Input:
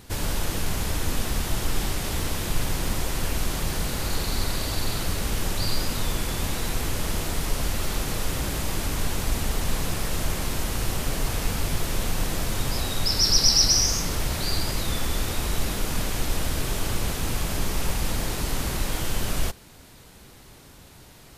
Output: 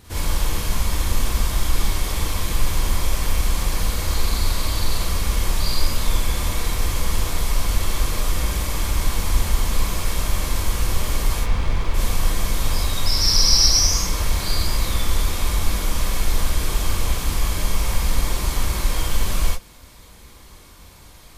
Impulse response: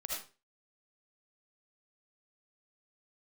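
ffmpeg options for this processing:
-filter_complex "[0:a]asplit=3[link_01][link_02][link_03];[link_01]afade=type=out:start_time=11.39:duration=0.02[link_04];[link_02]adynamicsmooth=sensitivity=8:basefreq=690,afade=type=in:start_time=11.39:duration=0.02,afade=type=out:start_time=11.93:duration=0.02[link_05];[link_03]afade=type=in:start_time=11.93:duration=0.02[link_06];[link_04][link_05][link_06]amix=inputs=3:normalize=0[link_07];[1:a]atrim=start_sample=2205,atrim=end_sample=6174,asetrate=74970,aresample=44100[link_08];[link_07][link_08]afir=irnorm=-1:irlink=0,volume=6.5dB"

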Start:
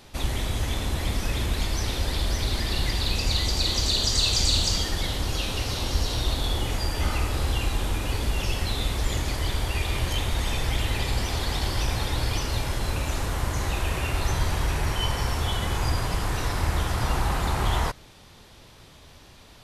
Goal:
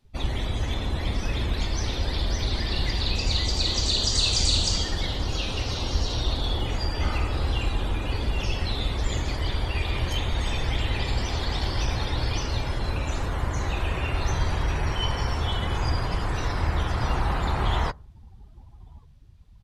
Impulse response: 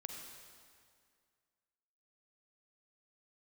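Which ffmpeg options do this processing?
-af "aecho=1:1:1140|2280|3420:0.0631|0.0297|0.0139,afftdn=noise_reduction=23:noise_floor=-40"

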